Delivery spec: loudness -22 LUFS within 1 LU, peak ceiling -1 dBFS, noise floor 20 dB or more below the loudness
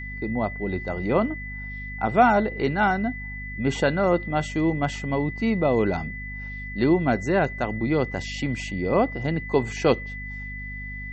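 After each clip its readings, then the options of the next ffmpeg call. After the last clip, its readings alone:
hum 50 Hz; highest harmonic 250 Hz; hum level -34 dBFS; steady tone 2 kHz; tone level -35 dBFS; loudness -25.0 LUFS; peak level -5.5 dBFS; loudness target -22.0 LUFS
-> -af "bandreject=f=50:t=h:w=6,bandreject=f=100:t=h:w=6,bandreject=f=150:t=h:w=6,bandreject=f=200:t=h:w=6,bandreject=f=250:t=h:w=6"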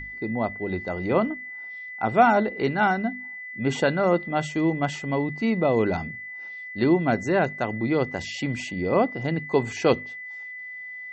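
hum not found; steady tone 2 kHz; tone level -35 dBFS
-> -af "bandreject=f=2000:w=30"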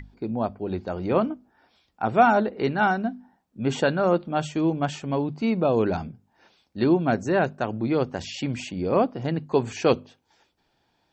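steady tone not found; loudness -25.0 LUFS; peak level -6.0 dBFS; loudness target -22.0 LUFS
-> -af "volume=1.41"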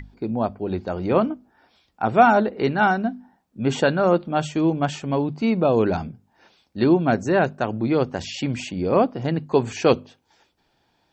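loudness -22.0 LUFS; peak level -3.0 dBFS; noise floor -68 dBFS

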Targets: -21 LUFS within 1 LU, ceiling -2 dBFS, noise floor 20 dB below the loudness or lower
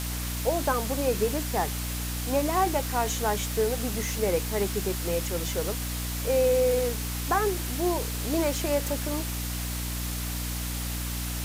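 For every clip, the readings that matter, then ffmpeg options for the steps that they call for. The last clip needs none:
hum 60 Hz; highest harmonic 300 Hz; hum level -30 dBFS; noise floor -32 dBFS; noise floor target -48 dBFS; loudness -28.0 LUFS; peak level -12.5 dBFS; loudness target -21.0 LUFS
-> -af "bandreject=f=60:t=h:w=6,bandreject=f=120:t=h:w=6,bandreject=f=180:t=h:w=6,bandreject=f=240:t=h:w=6,bandreject=f=300:t=h:w=6"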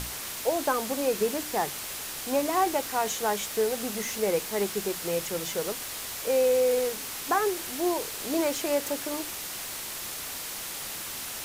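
hum not found; noise floor -37 dBFS; noise floor target -49 dBFS
-> -af "afftdn=nr=12:nf=-37"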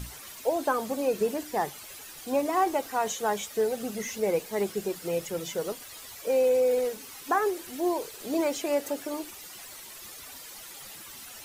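noise floor -45 dBFS; noise floor target -49 dBFS
-> -af "afftdn=nr=6:nf=-45"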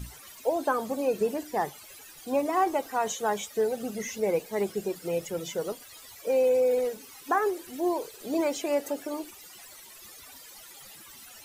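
noise floor -49 dBFS; loudness -29.0 LUFS; peak level -13.5 dBFS; loudness target -21.0 LUFS
-> -af "volume=2.51"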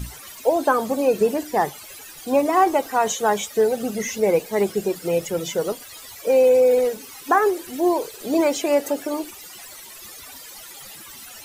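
loudness -21.0 LUFS; peak level -5.5 dBFS; noise floor -41 dBFS

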